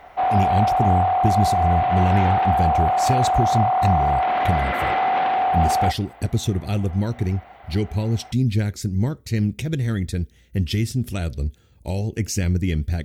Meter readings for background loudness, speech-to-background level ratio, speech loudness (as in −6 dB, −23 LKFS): −20.0 LKFS, −4.0 dB, −24.0 LKFS